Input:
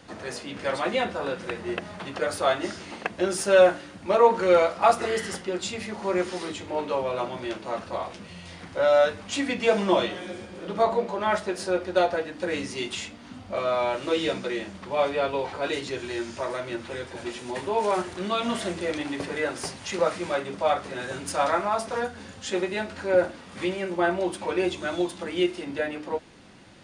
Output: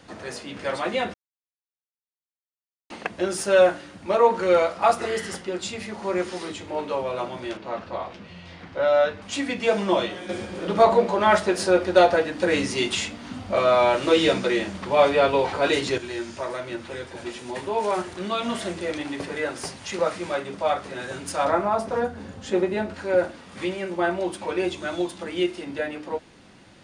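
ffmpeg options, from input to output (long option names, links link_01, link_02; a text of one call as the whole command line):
ffmpeg -i in.wav -filter_complex "[0:a]asettb=1/sr,asplit=3[link_01][link_02][link_03];[link_01]atrim=end=7.574[link_04];[link_02]atrim=start=7.57:end=9.22,asetpts=PTS-STARTPTS,afade=type=in:duration=0.004:curve=qsin,afade=type=out:start_time=1.646:duration=0.004:curve=qsin,lowpass=4200[link_05];[link_03]atrim=start=9.216[link_06];[link_04][link_05]acrossfade=duration=0.004:curve1=hsin:curve2=qsin[link_07];[link_07][link_06]acrossfade=duration=0.004:curve1=qsin:curve2=hsin,asettb=1/sr,asplit=3[link_08][link_09][link_10];[link_08]atrim=end=10.294[link_11];[link_09]atrim=start=10.29:end=15.98,asetpts=PTS-STARTPTS,afade=type=in:duration=0.004:curve=qsin,afade=type=out:start_time=5.686:duration=0.004:curve=qsin,acontrast=78[link_12];[link_10]atrim=start=15.976[link_13];[link_11][link_12]acrossfade=duration=0.004:curve1=hsin:curve2=qsin[link_14];[link_14][link_13]acrossfade=duration=0.004:curve1=qsin:curve2=hsin,asettb=1/sr,asplit=3[link_15][link_16][link_17];[link_15]atrim=end=21.454[link_18];[link_16]atrim=start=21.45:end=22.94,asetpts=PTS-STARTPTS,afade=type=in:duration=0.004:curve=qsin,afade=type=out:start_time=1.486:duration=0.004:curve=qsin,tiltshelf=frequency=1300:gain=6[link_19];[link_17]atrim=start=22.936[link_20];[link_18][link_19]acrossfade=duration=0.004:curve1=hsin:curve2=qsin[link_21];[link_21][link_20]acrossfade=duration=0.004:curve1=qsin:curve2=hsin,asplit=3[link_22][link_23][link_24];[link_22]atrim=end=1.14,asetpts=PTS-STARTPTS,afade=type=out:start_time=1.136:duration=0.004:curve=hsin[link_25];[link_23]atrim=start=1.14:end=2.9,asetpts=PTS-STARTPTS,volume=0[link_26];[link_24]atrim=start=2.9,asetpts=PTS-STARTPTS,afade=type=in:duration=0.004:curve=hsin[link_27];[link_25][link_26][link_27]concat=n=3:v=0:a=1" out.wav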